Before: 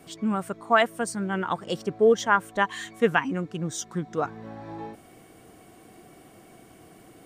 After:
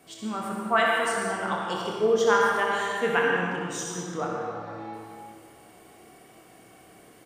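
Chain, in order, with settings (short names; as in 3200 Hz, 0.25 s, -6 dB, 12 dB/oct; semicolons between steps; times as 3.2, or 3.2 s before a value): low shelf 360 Hz -8 dB; early reflections 28 ms -6.5 dB, 63 ms -6.5 dB; reverb RT60 2.0 s, pre-delay 74 ms, DRR -1 dB; gain -3 dB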